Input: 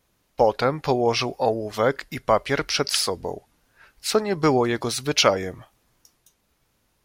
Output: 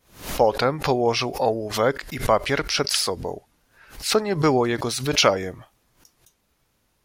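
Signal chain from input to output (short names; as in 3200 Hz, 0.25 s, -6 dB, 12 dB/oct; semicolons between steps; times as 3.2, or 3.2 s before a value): backwards sustainer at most 130 dB/s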